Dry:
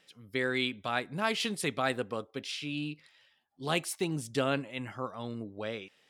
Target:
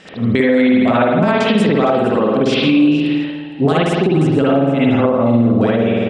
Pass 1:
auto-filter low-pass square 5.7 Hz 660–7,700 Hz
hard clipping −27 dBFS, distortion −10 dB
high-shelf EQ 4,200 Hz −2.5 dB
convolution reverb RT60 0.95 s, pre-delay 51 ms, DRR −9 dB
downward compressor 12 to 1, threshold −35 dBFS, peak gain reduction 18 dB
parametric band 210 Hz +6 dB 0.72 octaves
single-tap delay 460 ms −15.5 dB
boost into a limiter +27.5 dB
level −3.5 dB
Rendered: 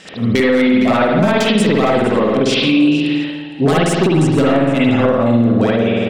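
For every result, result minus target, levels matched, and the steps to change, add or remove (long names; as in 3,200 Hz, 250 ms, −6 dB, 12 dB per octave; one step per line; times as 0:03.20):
hard clipping: distortion +29 dB; 8,000 Hz band +9.5 dB
change: hard clipping −15.5 dBFS, distortion −39 dB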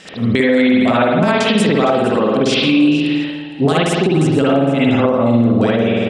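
8,000 Hz band +8.5 dB
change: high-shelf EQ 4,200 Hz −14.5 dB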